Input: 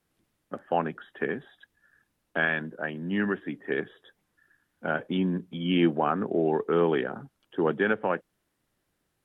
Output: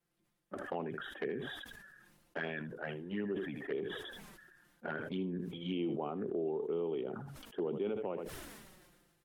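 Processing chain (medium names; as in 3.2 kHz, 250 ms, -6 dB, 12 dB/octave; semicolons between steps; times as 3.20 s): dynamic bell 400 Hz, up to +7 dB, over -40 dBFS, Q 2.5; touch-sensitive flanger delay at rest 5.8 ms, full sweep at -20 dBFS; compression 3:1, threshold -32 dBFS, peak gain reduction 13 dB; delay 79 ms -17 dB; decay stretcher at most 35 dB/s; trim -5 dB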